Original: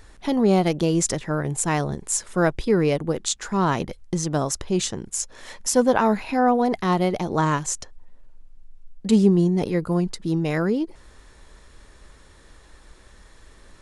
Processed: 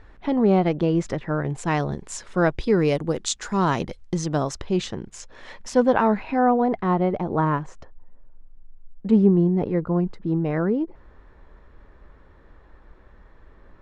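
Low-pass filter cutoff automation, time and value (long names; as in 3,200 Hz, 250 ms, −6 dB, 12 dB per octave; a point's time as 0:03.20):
0:01.23 2,300 Hz
0:01.79 4,300 Hz
0:02.43 4,300 Hz
0:02.91 8,000 Hz
0:03.67 8,000 Hz
0:04.94 3,300 Hz
0:05.80 3,300 Hz
0:06.89 1,500 Hz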